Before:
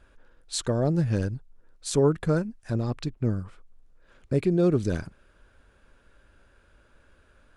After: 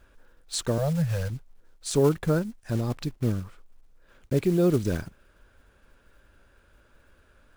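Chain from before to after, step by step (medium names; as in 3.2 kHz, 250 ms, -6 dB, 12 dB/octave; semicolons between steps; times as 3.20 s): block-companded coder 5-bit; 0.78–1.30 s: elliptic band-stop 170–490 Hz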